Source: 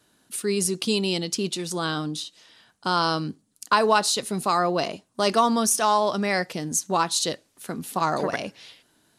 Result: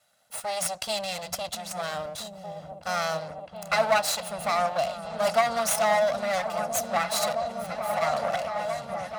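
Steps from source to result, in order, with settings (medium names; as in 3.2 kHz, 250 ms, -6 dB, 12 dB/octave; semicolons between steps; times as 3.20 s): comb filter that takes the minimum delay 1.5 ms; high-pass 77 Hz 12 dB/octave; resonant low shelf 500 Hz -7 dB, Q 3; on a send: delay with an opening low-pass 664 ms, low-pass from 200 Hz, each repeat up 1 oct, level 0 dB; on the sum: trim -2.5 dB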